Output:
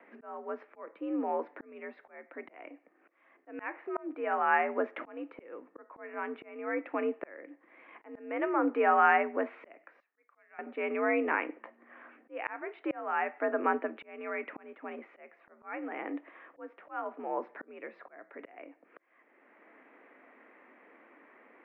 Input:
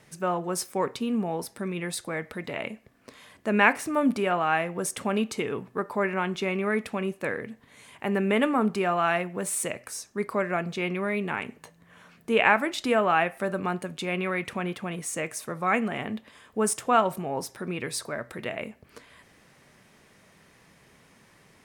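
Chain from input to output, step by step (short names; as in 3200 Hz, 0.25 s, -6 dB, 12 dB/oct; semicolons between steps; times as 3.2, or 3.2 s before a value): mistuned SSB +67 Hz 210–2200 Hz; auto swell 0.776 s; 10–10.59 differentiator; gain +1.5 dB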